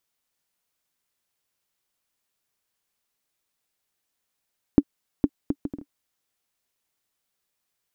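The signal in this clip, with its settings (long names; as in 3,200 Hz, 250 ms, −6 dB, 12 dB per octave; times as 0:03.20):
bouncing ball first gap 0.46 s, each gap 0.57, 286 Hz, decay 52 ms −3 dBFS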